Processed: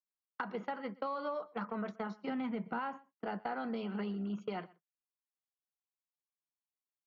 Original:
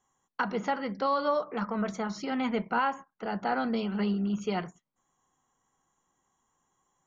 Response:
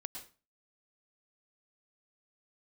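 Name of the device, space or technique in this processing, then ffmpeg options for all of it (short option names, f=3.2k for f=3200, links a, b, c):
AM radio: -filter_complex "[0:a]asettb=1/sr,asplit=3[a][b][c];[a]atrim=end=2.284[d];[b]atrim=start=2.28:end=3.24,asetpts=PTS-STARTPTS,afade=t=in:d=0.004:c=qsin,afade=t=out:st=0.956:d=0.004:c=qsin,equalizer=f=160:t=o:w=1.2:g=11[e];[c]atrim=start=3.236[f];[d][e]acrossfade=d=0.004:c1=hsin:c2=qsin[g];[g][f]acrossfade=d=0.004:c1=qsin:c2=hsin,agate=range=-38dB:threshold=-33dB:ratio=16:detection=peak,highpass=190,lowpass=4.3k,acompressor=threshold=-37dB:ratio=6,asoftclip=type=tanh:threshold=-25.5dB,highshelf=f=5.1k:g=-6,aecho=1:1:124:0.0708,volume=2dB"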